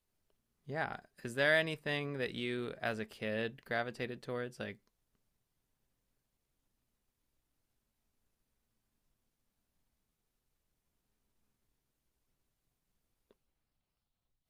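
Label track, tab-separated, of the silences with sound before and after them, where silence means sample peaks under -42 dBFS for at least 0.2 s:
0.990000	1.250000	silence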